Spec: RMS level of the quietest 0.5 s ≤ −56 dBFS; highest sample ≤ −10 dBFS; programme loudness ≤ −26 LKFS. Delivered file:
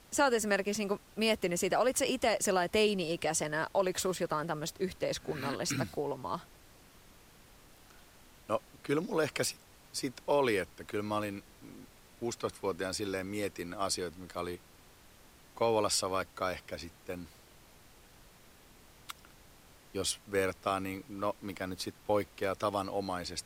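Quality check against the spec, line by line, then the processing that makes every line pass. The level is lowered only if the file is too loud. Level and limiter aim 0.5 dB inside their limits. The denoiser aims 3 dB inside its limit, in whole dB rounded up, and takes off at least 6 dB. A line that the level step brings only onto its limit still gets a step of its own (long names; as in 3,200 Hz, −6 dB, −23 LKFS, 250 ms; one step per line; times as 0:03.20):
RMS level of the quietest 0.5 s −58 dBFS: in spec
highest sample −17.5 dBFS: in spec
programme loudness −33.5 LKFS: in spec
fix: no processing needed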